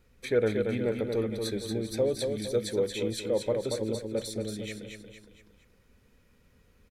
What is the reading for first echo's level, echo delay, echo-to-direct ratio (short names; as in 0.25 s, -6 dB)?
-5.0 dB, 0.231 s, -4.0 dB